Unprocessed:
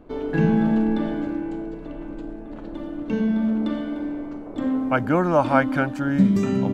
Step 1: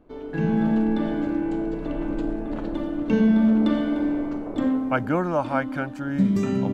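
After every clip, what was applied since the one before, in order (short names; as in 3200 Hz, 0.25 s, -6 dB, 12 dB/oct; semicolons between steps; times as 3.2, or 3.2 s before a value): AGC gain up to 15.5 dB; gain -8 dB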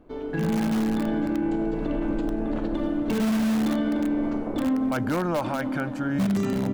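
in parallel at -9 dB: wrapped overs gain 16 dB; on the sum: darkening echo 0.268 s, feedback 72%, low-pass 1800 Hz, level -19 dB; limiter -18 dBFS, peak gain reduction 9.5 dB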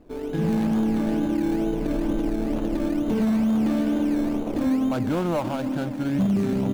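median filter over 25 samples; in parallel at -11 dB: decimation with a swept rate 18×, swing 60% 2.2 Hz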